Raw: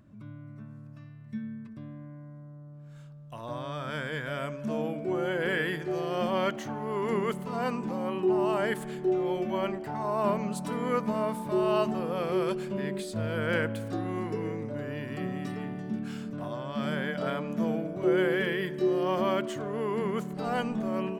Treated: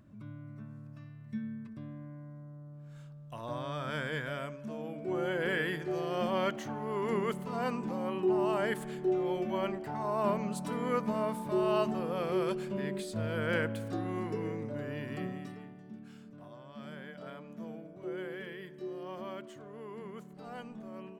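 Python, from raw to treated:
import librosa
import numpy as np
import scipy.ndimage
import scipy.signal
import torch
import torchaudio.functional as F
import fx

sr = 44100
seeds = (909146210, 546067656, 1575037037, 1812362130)

y = fx.gain(x, sr, db=fx.line((4.18, -1.5), (4.78, -10.0), (5.18, -3.0), (15.19, -3.0), (15.75, -14.5)))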